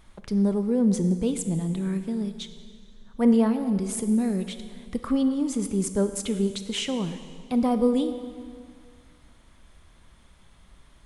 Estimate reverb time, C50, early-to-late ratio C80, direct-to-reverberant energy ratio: 2.0 s, 10.0 dB, 11.0 dB, 9.0 dB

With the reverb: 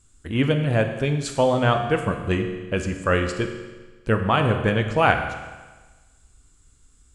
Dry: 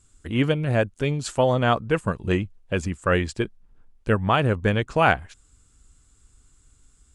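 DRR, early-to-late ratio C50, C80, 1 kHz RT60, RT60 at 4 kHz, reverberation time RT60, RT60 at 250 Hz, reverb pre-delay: 5.5 dB, 7.5 dB, 9.0 dB, 1.3 s, 1.3 s, 1.3 s, 1.3 s, 12 ms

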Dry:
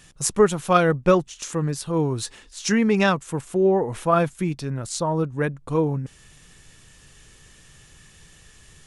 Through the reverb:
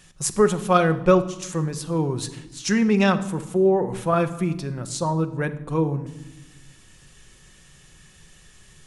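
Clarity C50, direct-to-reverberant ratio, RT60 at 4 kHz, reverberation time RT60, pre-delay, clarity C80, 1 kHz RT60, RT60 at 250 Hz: 13.5 dB, 8.5 dB, 0.70 s, 1.0 s, 5 ms, 16.5 dB, 0.90 s, 1.7 s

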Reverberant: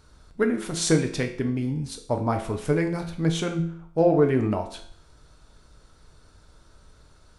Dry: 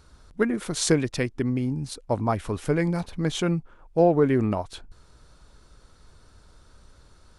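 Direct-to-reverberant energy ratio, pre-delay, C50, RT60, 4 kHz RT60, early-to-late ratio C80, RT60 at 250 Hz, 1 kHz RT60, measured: 4.0 dB, 6 ms, 10.0 dB, 0.60 s, 0.55 s, 13.5 dB, 0.60 s, 0.60 s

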